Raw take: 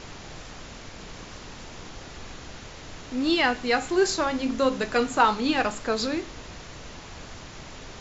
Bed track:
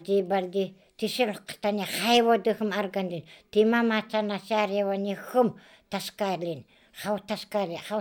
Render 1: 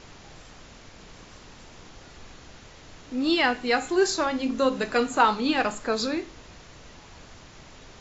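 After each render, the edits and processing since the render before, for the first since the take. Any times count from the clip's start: noise print and reduce 6 dB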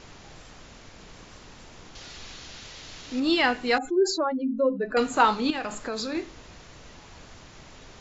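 1.95–3.20 s: peaking EQ 4.2 kHz +10.5 dB 2.1 oct; 3.78–4.97 s: spectral contrast enhancement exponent 2.3; 5.50–6.15 s: compression, threshold -27 dBFS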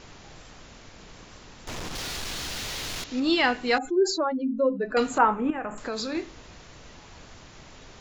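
1.67–3.04 s: waveshaping leveller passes 5; 5.18–5.78 s: Butterworth band-stop 4.6 kHz, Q 0.55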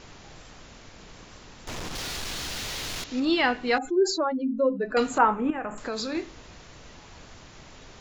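3.25–3.82 s: distance through air 95 m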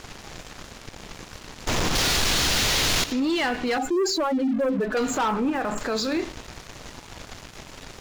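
waveshaping leveller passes 3; peak limiter -19 dBFS, peak gain reduction 11.5 dB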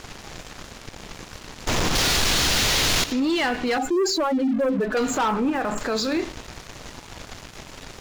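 trim +1.5 dB

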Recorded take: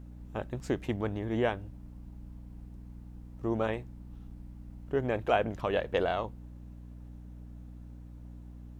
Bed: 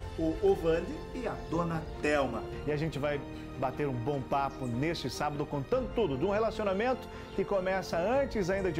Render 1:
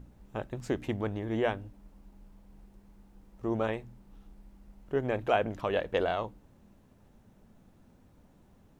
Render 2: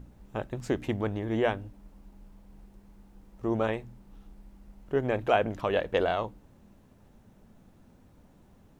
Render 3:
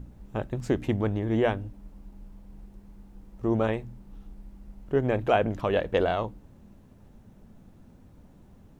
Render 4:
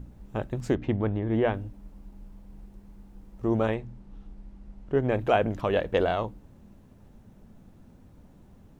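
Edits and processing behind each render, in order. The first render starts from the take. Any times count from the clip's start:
de-hum 60 Hz, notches 5
trim +2.5 dB
bass shelf 350 Hz +6 dB
0.75–1.54 s: distance through air 200 m; 3.74–5.12 s: distance through air 57 m

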